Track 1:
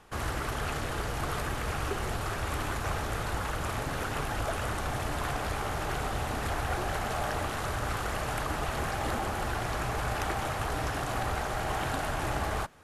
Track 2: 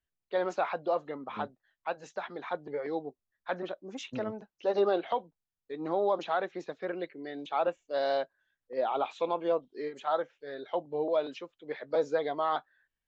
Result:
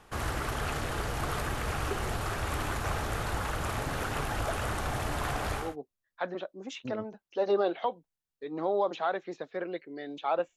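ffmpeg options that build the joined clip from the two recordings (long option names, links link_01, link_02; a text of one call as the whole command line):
ffmpeg -i cue0.wav -i cue1.wav -filter_complex "[0:a]apad=whole_dur=10.56,atrim=end=10.56,atrim=end=5.76,asetpts=PTS-STARTPTS[link_01];[1:a]atrim=start=2.82:end=7.84,asetpts=PTS-STARTPTS[link_02];[link_01][link_02]acrossfade=duration=0.22:curve1=tri:curve2=tri" out.wav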